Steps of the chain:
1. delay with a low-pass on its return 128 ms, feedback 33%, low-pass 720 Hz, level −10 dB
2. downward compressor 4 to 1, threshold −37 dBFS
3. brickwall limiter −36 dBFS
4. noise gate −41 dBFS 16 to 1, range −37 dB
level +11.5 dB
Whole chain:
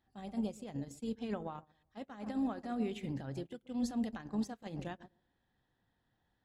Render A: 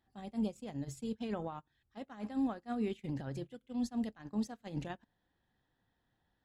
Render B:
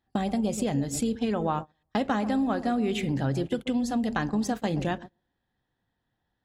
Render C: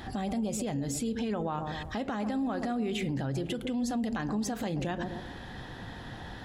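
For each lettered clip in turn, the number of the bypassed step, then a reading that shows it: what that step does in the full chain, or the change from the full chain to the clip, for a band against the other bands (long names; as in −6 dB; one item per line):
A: 1, 125 Hz band +1.5 dB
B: 3, average gain reduction 3.0 dB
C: 4, change in momentary loudness spread +1 LU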